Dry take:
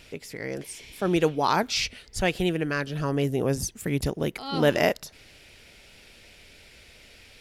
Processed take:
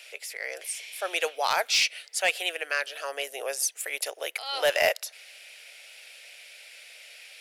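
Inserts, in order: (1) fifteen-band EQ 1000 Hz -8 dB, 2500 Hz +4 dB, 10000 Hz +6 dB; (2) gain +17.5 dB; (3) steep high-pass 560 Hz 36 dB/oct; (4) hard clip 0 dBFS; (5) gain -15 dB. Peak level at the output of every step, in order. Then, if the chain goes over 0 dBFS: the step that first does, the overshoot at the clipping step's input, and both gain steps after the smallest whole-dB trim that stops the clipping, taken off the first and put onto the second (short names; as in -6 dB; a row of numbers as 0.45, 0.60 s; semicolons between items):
-8.5, +9.0, +8.0, 0.0, -15.0 dBFS; step 2, 8.0 dB; step 2 +9.5 dB, step 5 -7 dB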